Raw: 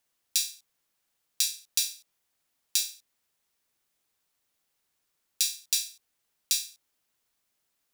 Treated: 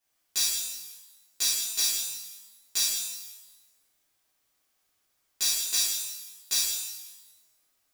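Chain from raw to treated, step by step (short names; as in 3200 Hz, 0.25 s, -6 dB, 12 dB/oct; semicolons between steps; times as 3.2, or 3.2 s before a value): wavefolder -16 dBFS; shimmer reverb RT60 1.1 s, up +12 st, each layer -8 dB, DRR -12 dB; gain -8.5 dB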